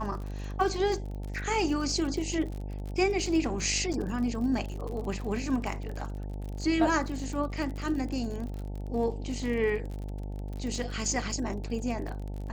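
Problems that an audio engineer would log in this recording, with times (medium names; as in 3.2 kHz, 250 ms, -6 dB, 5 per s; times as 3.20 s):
buzz 50 Hz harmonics 18 -36 dBFS
crackle 49 per s -36 dBFS
3.93–3.94 s: dropout 7 ms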